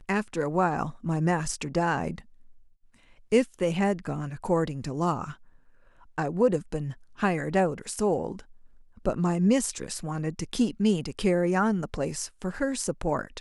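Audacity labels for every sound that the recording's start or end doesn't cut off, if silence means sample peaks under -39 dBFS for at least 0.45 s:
3.320000	5.340000	sound
6.180000	8.400000	sound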